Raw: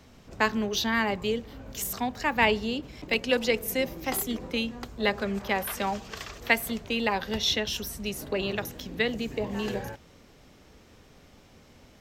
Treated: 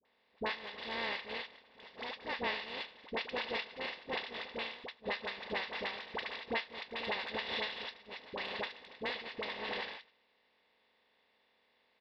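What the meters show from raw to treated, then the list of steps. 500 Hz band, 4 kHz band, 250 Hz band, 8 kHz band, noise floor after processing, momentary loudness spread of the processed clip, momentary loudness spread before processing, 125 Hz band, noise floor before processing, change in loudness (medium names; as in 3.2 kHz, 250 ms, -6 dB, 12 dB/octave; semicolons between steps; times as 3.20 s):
-12.5 dB, -8.5 dB, -18.5 dB, under -30 dB, -74 dBFS, 7 LU, 9 LU, -20.0 dB, -55 dBFS, -11.0 dB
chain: spectral levelling over time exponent 0.2; on a send: feedback echo behind a high-pass 74 ms, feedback 77%, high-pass 2.3 kHz, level -4 dB; on the sum: resampled via 11.025 kHz; gate -13 dBFS, range -50 dB; bass shelf 310 Hz -8.5 dB; phase dispersion highs, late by 54 ms, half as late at 750 Hz; compression 3:1, threshold -34 dBFS, peak gain reduction 13.5 dB; trim -2.5 dB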